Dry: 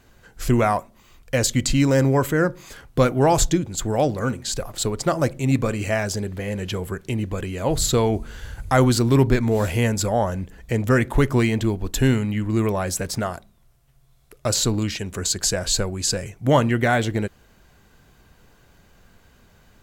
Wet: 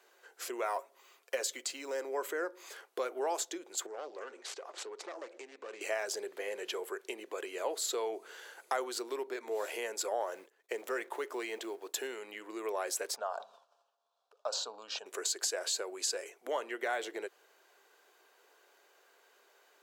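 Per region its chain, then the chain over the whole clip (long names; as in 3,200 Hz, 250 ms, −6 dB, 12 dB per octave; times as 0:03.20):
0:00.65–0:01.92: one scale factor per block 7 bits + comb filter 7.4 ms, depth 40%
0:03.86–0:05.81: phase distortion by the signal itself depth 0.27 ms + low-pass filter 7,100 Hz 24 dB per octave + downward compressor 12 to 1, threshold −30 dBFS
0:10.20–0:12.07: mu-law and A-law mismatch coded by mu + downward expander −29 dBFS
0:13.16–0:15.06: high-frequency loss of the air 170 metres + phaser with its sweep stopped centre 850 Hz, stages 4 + level that may fall only so fast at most 48 dB per second
whole clip: downward compressor 5 to 1, threshold −23 dBFS; elliptic high-pass filter 380 Hz, stop band 70 dB; level −6 dB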